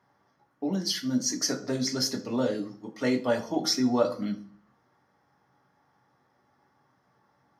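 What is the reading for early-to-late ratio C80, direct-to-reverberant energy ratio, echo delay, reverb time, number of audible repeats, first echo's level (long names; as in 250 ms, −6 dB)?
18.0 dB, 4.0 dB, no echo audible, 0.45 s, no echo audible, no echo audible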